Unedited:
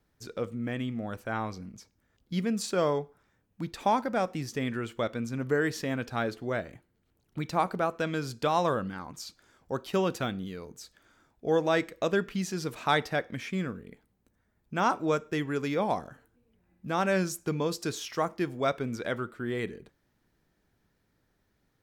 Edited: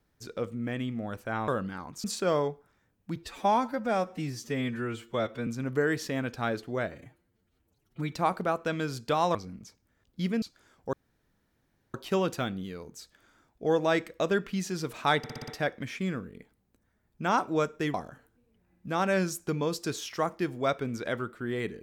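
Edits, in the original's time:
0:01.48–0:02.55: swap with 0:08.69–0:09.25
0:03.67–0:05.21: time-stretch 1.5×
0:06.66–0:07.46: time-stretch 1.5×
0:09.76: splice in room tone 1.01 s
0:13.00: stutter 0.06 s, 6 plays
0:15.46–0:15.93: remove

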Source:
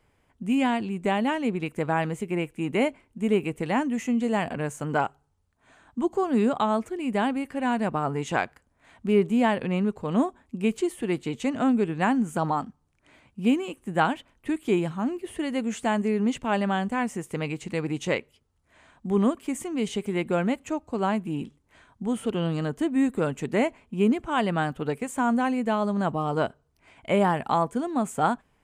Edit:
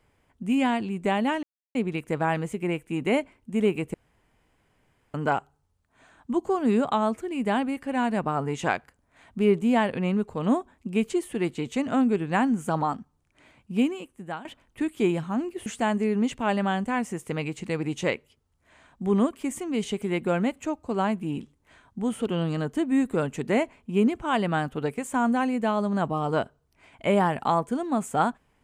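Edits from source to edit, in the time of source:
0:01.43: splice in silence 0.32 s
0:03.62–0:04.82: fill with room tone
0:13.40–0:14.13: fade out, to −20 dB
0:15.34–0:15.70: remove

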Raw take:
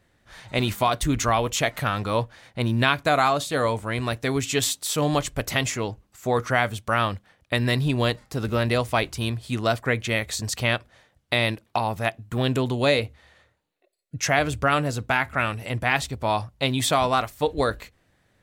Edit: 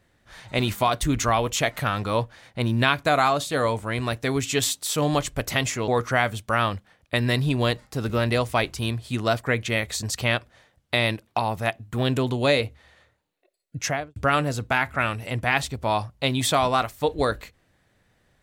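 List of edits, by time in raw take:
0:05.88–0:06.27: remove
0:14.18–0:14.55: fade out and dull

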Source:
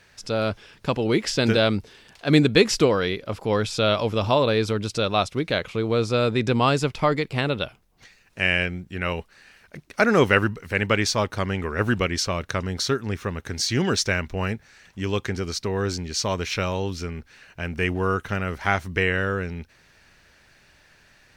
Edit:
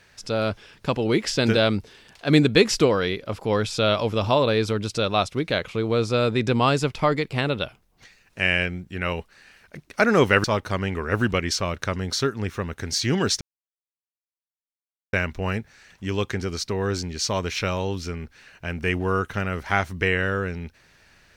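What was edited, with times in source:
0:10.44–0:11.11: remove
0:14.08: splice in silence 1.72 s

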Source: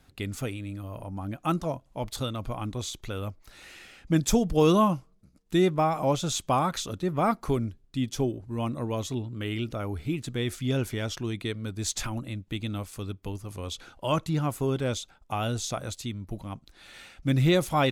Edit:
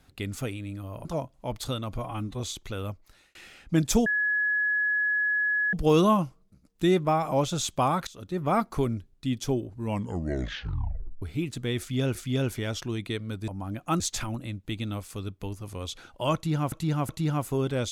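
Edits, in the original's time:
0:01.05–0:01.57: move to 0:11.83
0:02.50–0:02.78: time-stretch 1.5×
0:03.28–0:03.73: fade out
0:04.44: insert tone 1,690 Hz −22.5 dBFS 1.67 s
0:06.78–0:07.16: fade in, from −21.5 dB
0:08.52: tape stop 1.41 s
0:10.50–0:10.86: repeat, 2 plays
0:14.18–0:14.55: repeat, 3 plays

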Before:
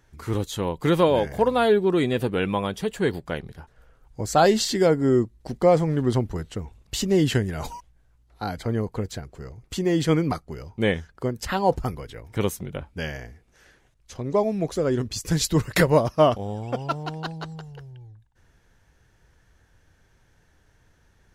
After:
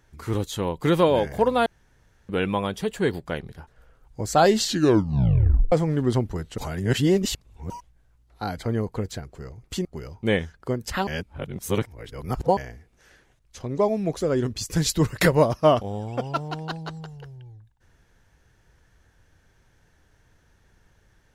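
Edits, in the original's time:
0:01.66–0:02.29: fill with room tone
0:04.63: tape stop 1.09 s
0:06.58–0:07.70: reverse
0:09.85–0:10.40: remove
0:11.62–0:13.12: reverse

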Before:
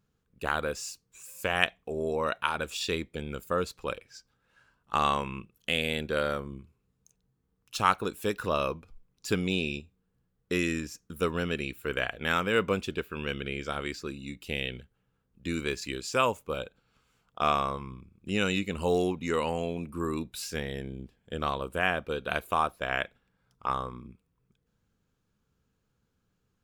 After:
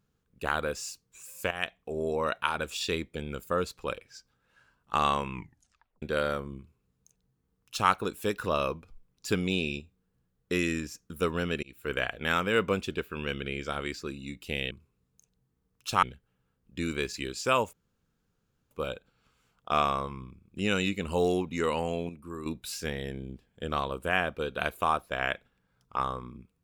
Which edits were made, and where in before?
0:01.51–0:01.97: fade in, from −12 dB
0:05.32: tape stop 0.70 s
0:06.58–0:07.90: duplicate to 0:14.71
0:11.63–0:11.91: fade in
0:16.41: splice in room tone 0.98 s
0:19.79–0:20.16: clip gain −8 dB

